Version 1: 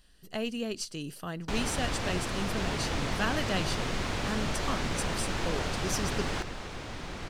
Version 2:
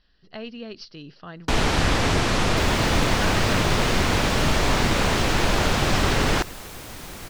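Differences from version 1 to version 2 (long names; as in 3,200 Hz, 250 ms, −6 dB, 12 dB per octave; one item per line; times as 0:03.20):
speech: add Chebyshev low-pass with heavy ripple 5,500 Hz, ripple 3 dB
first sound +12.0 dB
second sound: remove high-frequency loss of the air 110 metres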